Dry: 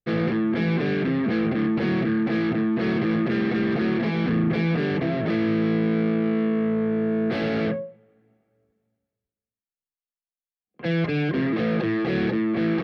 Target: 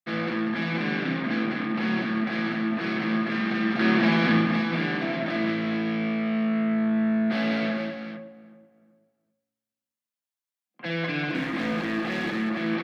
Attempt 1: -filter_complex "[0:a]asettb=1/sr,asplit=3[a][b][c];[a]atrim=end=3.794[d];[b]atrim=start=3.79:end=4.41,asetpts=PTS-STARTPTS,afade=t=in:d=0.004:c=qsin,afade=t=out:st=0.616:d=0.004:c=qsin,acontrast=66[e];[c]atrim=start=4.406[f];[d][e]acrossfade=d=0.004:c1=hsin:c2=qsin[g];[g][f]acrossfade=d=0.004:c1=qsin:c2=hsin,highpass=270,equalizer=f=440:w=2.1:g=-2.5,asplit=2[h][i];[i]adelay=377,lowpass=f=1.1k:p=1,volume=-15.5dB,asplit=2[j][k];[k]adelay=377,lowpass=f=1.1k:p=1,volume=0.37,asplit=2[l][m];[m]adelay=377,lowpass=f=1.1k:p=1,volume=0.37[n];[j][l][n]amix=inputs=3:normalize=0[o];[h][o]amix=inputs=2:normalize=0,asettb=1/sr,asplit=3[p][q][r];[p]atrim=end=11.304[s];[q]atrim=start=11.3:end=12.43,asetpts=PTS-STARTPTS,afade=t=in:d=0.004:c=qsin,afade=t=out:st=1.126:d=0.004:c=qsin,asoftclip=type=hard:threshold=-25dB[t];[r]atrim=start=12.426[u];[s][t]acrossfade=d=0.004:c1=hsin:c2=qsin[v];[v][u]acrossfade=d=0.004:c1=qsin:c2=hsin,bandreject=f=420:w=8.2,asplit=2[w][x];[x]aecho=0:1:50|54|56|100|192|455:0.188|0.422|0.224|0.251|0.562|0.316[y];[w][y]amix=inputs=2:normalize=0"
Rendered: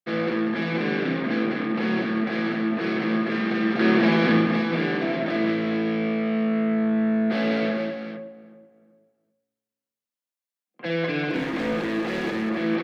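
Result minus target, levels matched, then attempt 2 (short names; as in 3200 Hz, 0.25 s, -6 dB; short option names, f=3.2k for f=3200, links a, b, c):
500 Hz band +4.0 dB
-filter_complex "[0:a]asettb=1/sr,asplit=3[a][b][c];[a]atrim=end=3.794[d];[b]atrim=start=3.79:end=4.41,asetpts=PTS-STARTPTS,afade=t=in:d=0.004:c=qsin,afade=t=out:st=0.616:d=0.004:c=qsin,acontrast=66[e];[c]atrim=start=4.406[f];[d][e]acrossfade=d=0.004:c1=hsin:c2=qsin[g];[g][f]acrossfade=d=0.004:c1=qsin:c2=hsin,highpass=270,equalizer=f=440:w=2.1:g=-12.5,asplit=2[h][i];[i]adelay=377,lowpass=f=1.1k:p=1,volume=-15.5dB,asplit=2[j][k];[k]adelay=377,lowpass=f=1.1k:p=1,volume=0.37,asplit=2[l][m];[m]adelay=377,lowpass=f=1.1k:p=1,volume=0.37[n];[j][l][n]amix=inputs=3:normalize=0[o];[h][o]amix=inputs=2:normalize=0,asettb=1/sr,asplit=3[p][q][r];[p]atrim=end=11.304[s];[q]atrim=start=11.3:end=12.43,asetpts=PTS-STARTPTS,afade=t=in:d=0.004:c=qsin,afade=t=out:st=1.126:d=0.004:c=qsin,asoftclip=type=hard:threshold=-25dB[t];[r]atrim=start=12.426[u];[s][t]acrossfade=d=0.004:c1=hsin:c2=qsin[v];[v][u]acrossfade=d=0.004:c1=qsin:c2=hsin,bandreject=f=420:w=8.2,asplit=2[w][x];[x]aecho=0:1:50|54|56|100|192|455:0.188|0.422|0.224|0.251|0.562|0.316[y];[w][y]amix=inputs=2:normalize=0"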